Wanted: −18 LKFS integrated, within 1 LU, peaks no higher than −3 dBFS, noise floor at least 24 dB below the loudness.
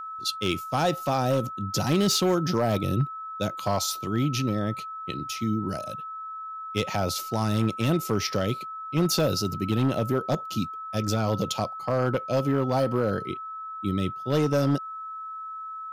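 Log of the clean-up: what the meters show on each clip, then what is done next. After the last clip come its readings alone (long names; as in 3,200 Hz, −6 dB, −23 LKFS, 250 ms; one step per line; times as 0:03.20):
share of clipped samples 1.1%; peaks flattened at −16.5 dBFS; interfering tone 1,300 Hz; level of the tone −34 dBFS; integrated loudness −27.0 LKFS; sample peak −16.5 dBFS; target loudness −18.0 LKFS
→ clipped peaks rebuilt −16.5 dBFS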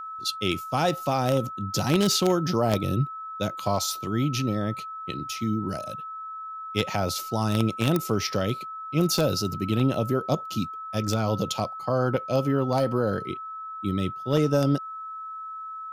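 share of clipped samples 0.0%; interfering tone 1,300 Hz; level of the tone −34 dBFS
→ notch filter 1,300 Hz, Q 30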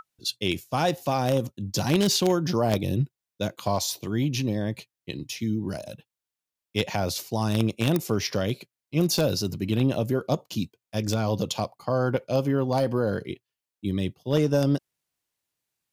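interfering tone none found; integrated loudness −26.5 LKFS; sample peak −7.5 dBFS; target loudness −18.0 LKFS
→ level +8.5 dB
brickwall limiter −3 dBFS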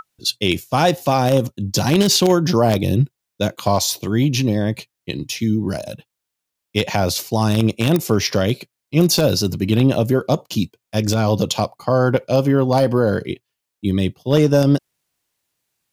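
integrated loudness −18.5 LKFS; sample peak −3.0 dBFS; background noise floor −81 dBFS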